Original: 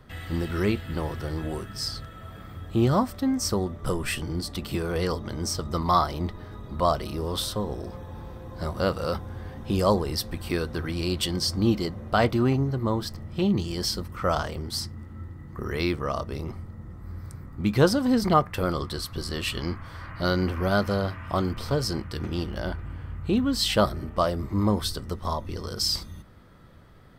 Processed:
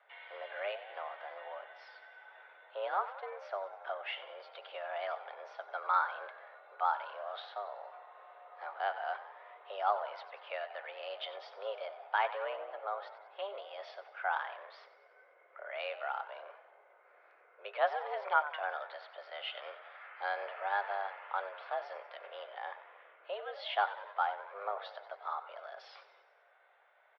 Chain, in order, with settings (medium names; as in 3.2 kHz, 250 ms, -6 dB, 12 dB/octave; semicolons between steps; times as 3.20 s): frequency-shifting echo 93 ms, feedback 58%, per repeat +70 Hz, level -14.5 dB; mistuned SSB +200 Hz 400–3000 Hz; trim -8 dB